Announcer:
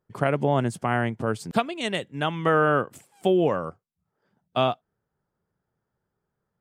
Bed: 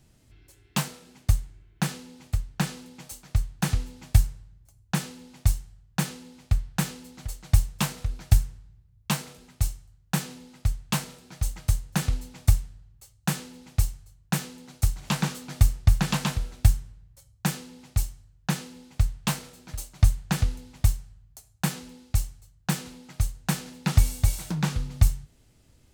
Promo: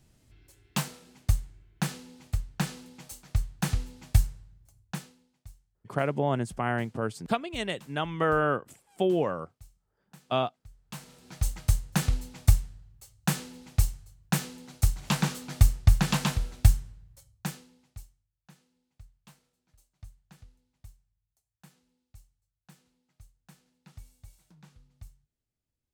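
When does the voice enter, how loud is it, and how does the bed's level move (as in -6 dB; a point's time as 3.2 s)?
5.75 s, -4.5 dB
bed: 4.77 s -3 dB
5.42 s -27 dB
10.67 s -27 dB
11.3 s -0.5 dB
17.15 s -0.5 dB
18.35 s -29 dB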